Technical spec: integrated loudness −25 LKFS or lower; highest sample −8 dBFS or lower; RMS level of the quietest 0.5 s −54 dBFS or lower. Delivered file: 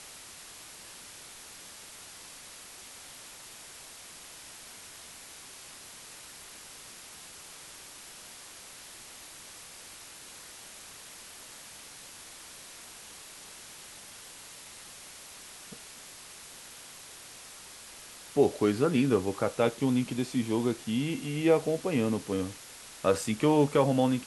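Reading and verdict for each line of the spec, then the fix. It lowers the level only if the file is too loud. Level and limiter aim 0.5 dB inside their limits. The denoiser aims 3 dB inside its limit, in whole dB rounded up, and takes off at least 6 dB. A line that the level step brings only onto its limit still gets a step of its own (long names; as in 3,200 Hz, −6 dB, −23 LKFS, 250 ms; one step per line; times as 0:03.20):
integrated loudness −28.0 LKFS: in spec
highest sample −10.5 dBFS: in spec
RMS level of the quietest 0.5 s −48 dBFS: out of spec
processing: broadband denoise 9 dB, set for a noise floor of −48 dBFS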